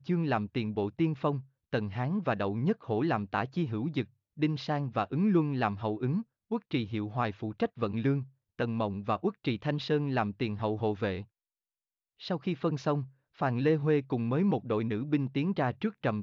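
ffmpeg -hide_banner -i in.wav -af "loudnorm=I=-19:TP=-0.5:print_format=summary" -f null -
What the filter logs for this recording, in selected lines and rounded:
Input Integrated:    -31.1 LUFS
Input True Peak:     -14.7 dBTP
Input LRA:             2.9 LU
Input Threshold:     -41.3 LUFS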